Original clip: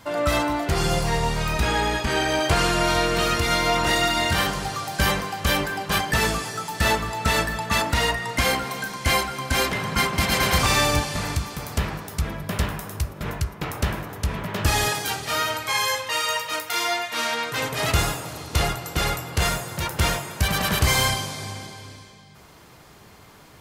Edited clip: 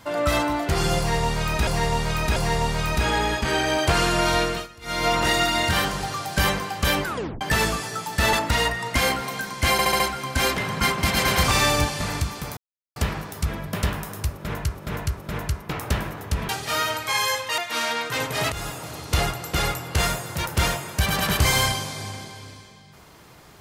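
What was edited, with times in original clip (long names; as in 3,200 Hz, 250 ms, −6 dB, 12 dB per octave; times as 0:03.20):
0:00.98–0:01.67: repeat, 3 plays
0:03.04–0:03.69: duck −23.5 dB, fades 0.26 s
0:05.67: tape stop 0.36 s
0:06.95–0:07.76: remove
0:09.15: stutter 0.07 s, 5 plays
0:11.72: splice in silence 0.39 s
0:13.09–0:13.51: repeat, 3 plays
0:14.41–0:15.09: remove
0:16.18–0:17.00: remove
0:17.94–0:18.48: fade in equal-power, from −16.5 dB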